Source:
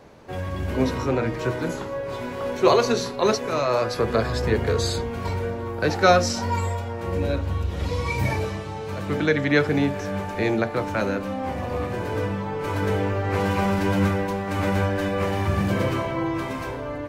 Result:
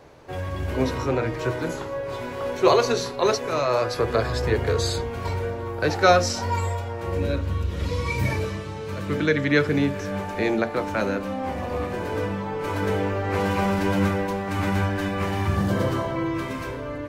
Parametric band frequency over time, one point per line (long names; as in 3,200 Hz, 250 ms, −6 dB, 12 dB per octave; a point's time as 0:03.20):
parametric band −10 dB 0.33 octaves
210 Hz
from 0:07.21 770 Hz
from 0:10.11 120 Hz
from 0:14.49 530 Hz
from 0:15.56 2,400 Hz
from 0:16.16 790 Hz